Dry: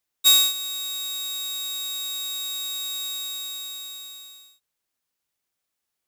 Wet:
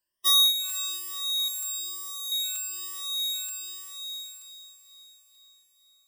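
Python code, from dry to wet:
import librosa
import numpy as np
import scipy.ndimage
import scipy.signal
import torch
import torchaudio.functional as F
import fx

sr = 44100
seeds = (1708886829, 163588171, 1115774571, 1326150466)

p1 = fx.spec_ripple(x, sr, per_octave=1.3, drift_hz=1.1, depth_db=23)
p2 = fx.spec_gate(p1, sr, threshold_db=-30, keep='strong')
p3 = fx.band_shelf(p2, sr, hz=2400.0, db=-10.0, octaves=1.7, at=(1.48, 2.32))
p4 = p3 + fx.echo_diffused(p3, sr, ms=489, feedback_pct=55, wet_db=-13.5, dry=0)
p5 = fx.buffer_crackle(p4, sr, first_s=0.69, period_s=0.93, block=256, kind='repeat')
y = F.gain(torch.from_numpy(p5), -7.5).numpy()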